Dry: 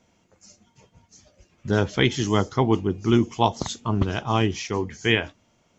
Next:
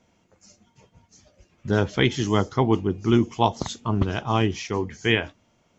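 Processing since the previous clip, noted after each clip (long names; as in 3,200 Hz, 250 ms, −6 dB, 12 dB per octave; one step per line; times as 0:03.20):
high-shelf EQ 5,200 Hz −4.5 dB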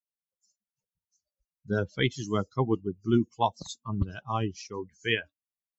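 spectral dynamics exaggerated over time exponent 2
level −2.5 dB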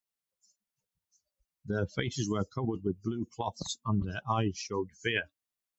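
compressor whose output falls as the input rises −30 dBFS, ratio −1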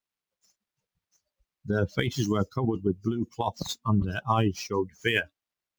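running median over 5 samples
level +5.5 dB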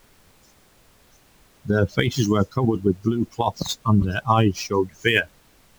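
background noise pink −62 dBFS
level +6.5 dB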